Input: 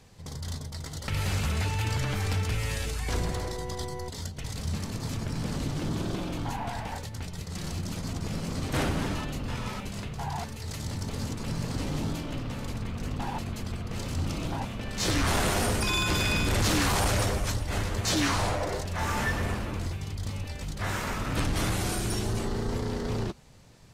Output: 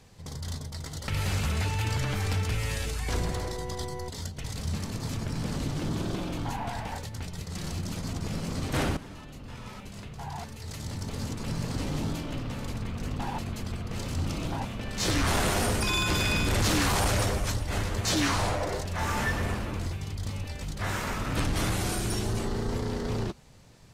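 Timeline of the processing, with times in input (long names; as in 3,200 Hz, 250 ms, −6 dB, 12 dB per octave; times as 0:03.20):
0:08.97–0:11.50: fade in, from −15 dB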